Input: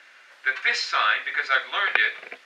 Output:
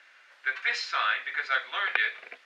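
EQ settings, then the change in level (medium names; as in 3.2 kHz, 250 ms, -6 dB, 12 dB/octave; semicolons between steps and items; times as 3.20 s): bass shelf 380 Hz -8 dB; treble shelf 6.4 kHz -6 dB; -4.5 dB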